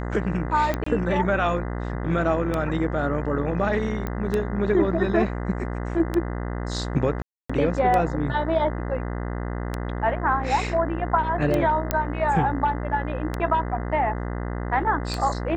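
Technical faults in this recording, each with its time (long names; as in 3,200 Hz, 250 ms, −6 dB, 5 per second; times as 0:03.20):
mains buzz 60 Hz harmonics 34 −29 dBFS
scratch tick 33 1/3 rpm −12 dBFS
0:00.84–0:00.86: drop-out 24 ms
0:04.07: click −16 dBFS
0:07.22–0:07.50: drop-out 275 ms
0:11.91: click −7 dBFS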